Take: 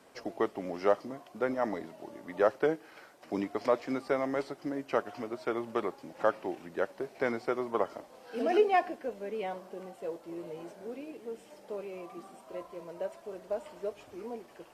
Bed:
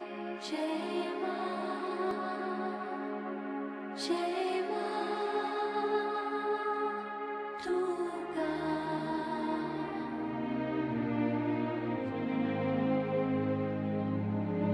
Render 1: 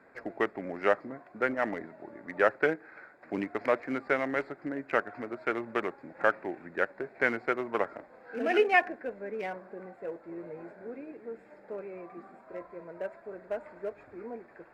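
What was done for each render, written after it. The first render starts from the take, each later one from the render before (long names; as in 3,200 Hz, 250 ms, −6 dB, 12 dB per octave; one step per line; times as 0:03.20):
adaptive Wiener filter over 15 samples
flat-topped bell 2,000 Hz +11 dB 1.2 octaves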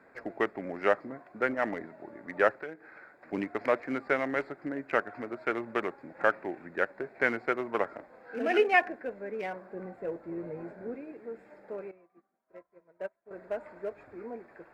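0:02.51–0:03.33: downward compressor 2 to 1, threshold −47 dBFS
0:09.74–0:10.96: low-shelf EQ 280 Hz +9.5 dB
0:11.91–0:13.31: expander for the loud parts 2.5 to 1, over −52 dBFS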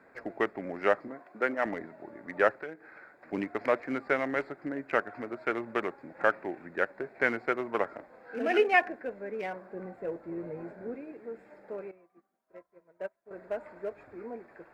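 0:01.08–0:01.66: high-pass filter 210 Hz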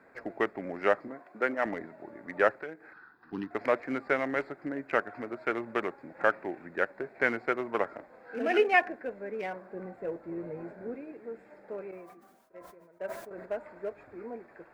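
0:02.93–0:03.51: phaser with its sweep stopped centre 2,200 Hz, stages 6
0:11.80–0:13.46: level that may fall only so fast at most 47 dB per second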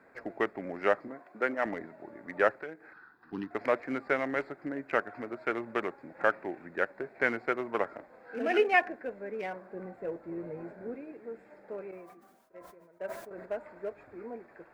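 level −1 dB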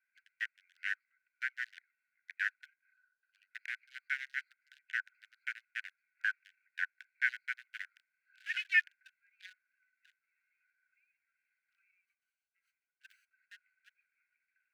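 adaptive Wiener filter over 25 samples
Chebyshev high-pass filter 1,500 Hz, order 8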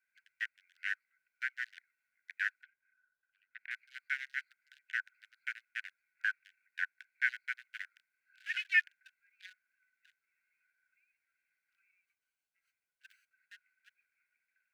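0:02.63–0:03.71: high-frequency loss of the air 380 metres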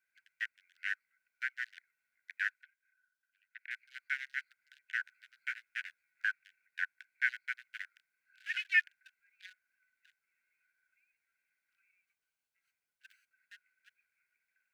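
0:02.54–0:03.85: Butterworth high-pass 1,400 Hz
0:04.98–0:06.25: double-tracking delay 14 ms −4 dB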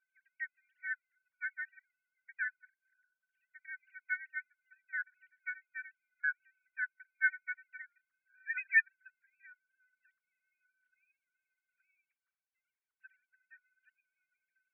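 three sine waves on the formant tracks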